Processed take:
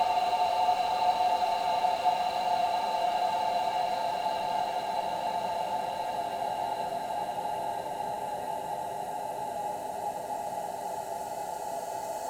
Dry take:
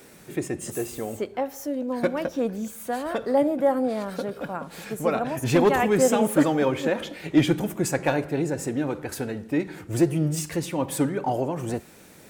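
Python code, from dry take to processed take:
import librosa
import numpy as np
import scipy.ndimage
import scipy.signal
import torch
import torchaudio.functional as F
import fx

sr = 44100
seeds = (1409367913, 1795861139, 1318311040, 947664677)

y = fx.band_invert(x, sr, width_hz=1000)
y = fx.paulstretch(y, sr, seeds[0], factor=39.0, window_s=0.5, from_s=7.43)
y = np.interp(np.arange(len(y)), np.arange(len(y))[::2], y[::2])
y = F.gain(torch.from_numpy(y), -7.5).numpy()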